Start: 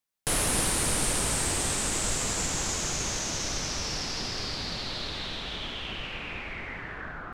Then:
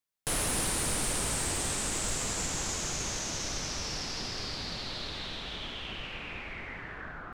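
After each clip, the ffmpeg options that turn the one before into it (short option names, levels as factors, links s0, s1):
-af "asoftclip=type=hard:threshold=0.0944,volume=0.668"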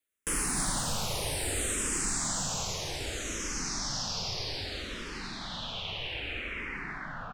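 -filter_complex "[0:a]asplit=2[s0][s1];[s1]alimiter=level_in=3.98:limit=0.0631:level=0:latency=1,volume=0.251,volume=0.891[s2];[s0][s2]amix=inputs=2:normalize=0,aecho=1:1:302:0.562,asplit=2[s3][s4];[s4]afreqshift=-0.63[s5];[s3][s5]amix=inputs=2:normalize=1"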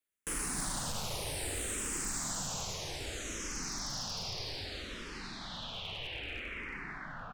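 -af "aeval=exprs='clip(val(0),-1,0.0335)':c=same,volume=0.596"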